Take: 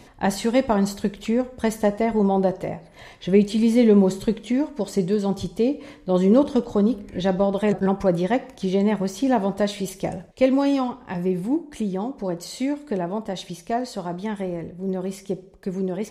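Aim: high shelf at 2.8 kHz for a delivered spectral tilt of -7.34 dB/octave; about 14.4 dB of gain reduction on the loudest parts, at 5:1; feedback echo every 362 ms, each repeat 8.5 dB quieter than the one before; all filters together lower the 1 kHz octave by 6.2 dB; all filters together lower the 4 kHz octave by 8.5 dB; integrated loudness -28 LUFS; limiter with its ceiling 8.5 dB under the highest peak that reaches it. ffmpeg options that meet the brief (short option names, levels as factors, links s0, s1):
-af "equalizer=f=1000:t=o:g=-8.5,highshelf=f=2800:g=-3.5,equalizer=f=4000:t=o:g=-7.5,acompressor=threshold=0.0355:ratio=5,alimiter=level_in=1.26:limit=0.0631:level=0:latency=1,volume=0.794,aecho=1:1:362|724|1086|1448:0.376|0.143|0.0543|0.0206,volume=2.24"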